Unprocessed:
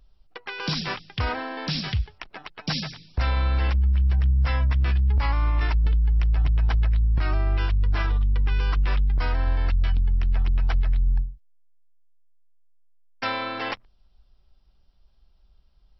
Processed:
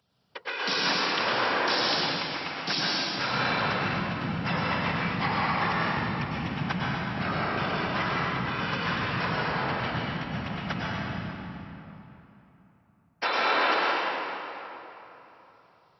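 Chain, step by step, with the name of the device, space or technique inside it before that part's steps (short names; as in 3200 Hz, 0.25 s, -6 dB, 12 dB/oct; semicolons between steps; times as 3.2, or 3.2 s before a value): whispering ghost (whisperiser; HPF 380 Hz 12 dB/oct; reverb RT60 3.4 s, pre-delay 95 ms, DRR -5.5 dB)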